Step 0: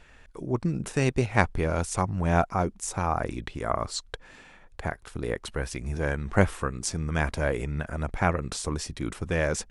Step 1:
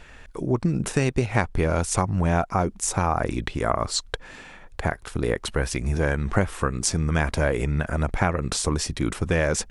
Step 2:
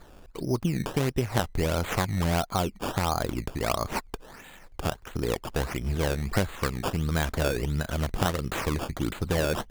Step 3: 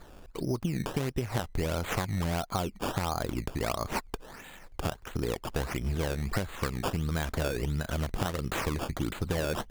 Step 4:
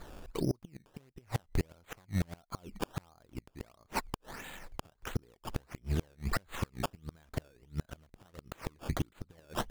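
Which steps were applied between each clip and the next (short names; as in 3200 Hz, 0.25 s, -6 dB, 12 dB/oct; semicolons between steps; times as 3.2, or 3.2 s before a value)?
compressor 6:1, threshold -25 dBFS, peak gain reduction 10.5 dB; gain +7.5 dB
decimation with a swept rate 15×, swing 100% 1.5 Hz; gain -4 dB
compressor, threshold -26 dBFS, peak gain reduction 8 dB
flipped gate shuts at -21 dBFS, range -32 dB; gain +1.5 dB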